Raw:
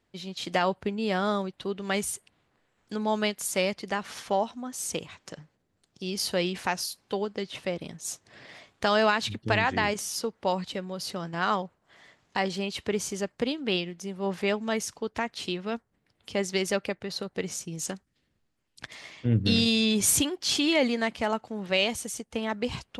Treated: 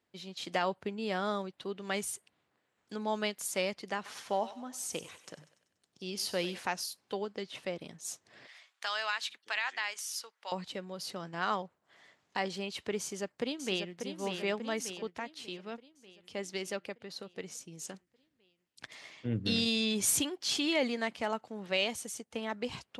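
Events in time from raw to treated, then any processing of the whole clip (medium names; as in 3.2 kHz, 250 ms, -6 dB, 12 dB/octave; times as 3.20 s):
3.96–6.59 s: thinning echo 96 ms, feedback 55%, high-pass 550 Hz, level -14 dB
8.47–10.52 s: high-pass 1.3 kHz
13.00–13.98 s: echo throw 590 ms, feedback 60%, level -6.5 dB
15.10–17.94 s: gain -4 dB
whole clip: high-pass 55 Hz; bass shelf 120 Hz -10.5 dB; trim -5.5 dB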